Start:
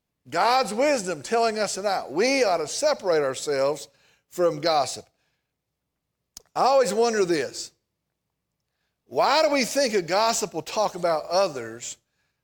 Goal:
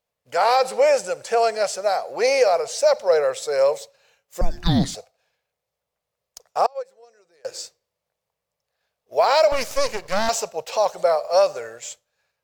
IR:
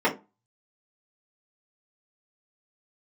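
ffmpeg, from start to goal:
-filter_complex "[0:a]asettb=1/sr,asplit=3[link_01][link_02][link_03];[link_01]atrim=end=6.664[link_04];[link_02]atrim=start=6.66:end=7.45,asetpts=PTS-STARTPTS,afade=type=in:duration=0.004:curve=qsin,afade=type=out:start_time=0.786:duration=0.004:curve=qsin,agate=range=-33dB:threshold=-14dB:ratio=16:detection=peak[link_05];[link_03]atrim=start=7.446[link_06];[link_04][link_05]acrossfade=duration=0.004:curve1=hsin:curve2=qsin[link_07];[link_07][link_06]acrossfade=duration=0.004:curve1=qsin:curve2=hsin,lowshelf=frequency=400:width_type=q:width=3:gain=-8.5,asettb=1/sr,asplit=3[link_08][link_09][link_10];[link_08]atrim=end=4.414[link_11];[link_09]atrim=start=4.41:end=4.95,asetpts=PTS-STARTPTS,afade=type=in:duration=0.004:curve=qsin,afade=type=out:start_time=0.536:duration=0.004:curve=qsin,afreqshift=-500[link_12];[link_10]atrim=start=4.946[link_13];[link_11][link_12]acrossfade=duration=0.004:curve1=hsin:curve2=qsin[link_14];[link_14][link_13]acrossfade=duration=0.004:curve1=qsin:curve2=hsin,asettb=1/sr,asplit=3[link_15][link_16][link_17];[link_15]atrim=end=9.524[link_18];[link_16]atrim=start=9.52:end=10.29,asetpts=PTS-STARTPTS,afade=type=in:duration=0.004:curve=qsin,afade=type=out:start_time=0.766:duration=0.004:curve=qsin,aeval=exprs='max(val(0),0)':channel_layout=same[link_19];[link_17]atrim=start=10.286[link_20];[link_18][link_19]acrossfade=duration=0.004:curve1=hsin:curve2=qsin[link_21];[link_21][link_20]acrossfade=duration=0.004:curve1=qsin:curve2=hsin"

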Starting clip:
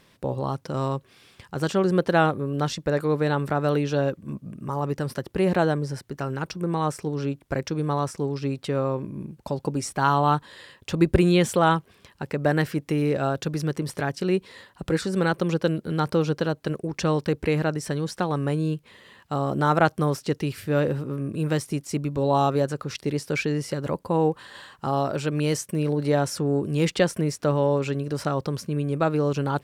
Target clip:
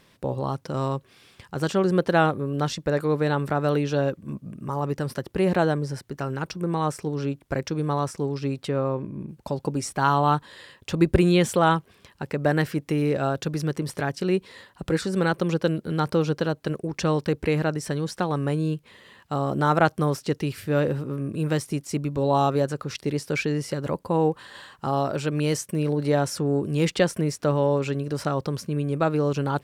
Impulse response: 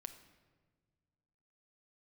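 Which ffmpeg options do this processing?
-filter_complex "[0:a]asettb=1/sr,asplit=3[link_01][link_02][link_03];[link_01]atrim=end=8.694[link_04];[link_02]atrim=start=8.69:end=9.29,asetpts=PTS-STARTPTS,afade=type=in:duration=0.004:curve=qsin,afade=type=out:start_time=0.596:duration=0.004:curve=qsin,highshelf=frequency=4900:gain=-10[link_05];[link_03]atrim=start=9.286[link_06];[link_04][link_05]acrossfade=duration=0.004:curve1=hsin:curve2=qsin[link_07];[link_07][link_06]acrossfade=duration=0.004:curve1=qsin:curve2=hsin"

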